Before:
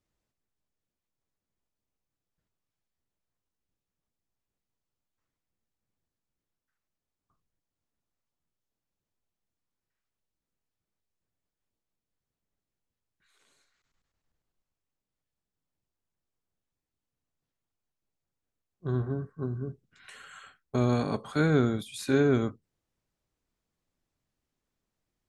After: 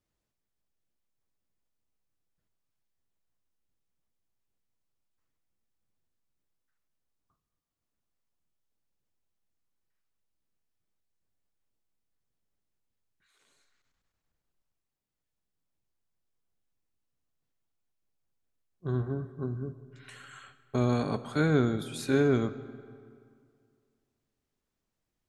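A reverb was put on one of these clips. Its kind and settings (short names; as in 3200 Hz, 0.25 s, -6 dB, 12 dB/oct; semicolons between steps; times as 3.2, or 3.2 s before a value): digital reverb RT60 2.2 s, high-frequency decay 0.7×, pre-delay 75 ms, DRR 15.5 dB; gain -1 dB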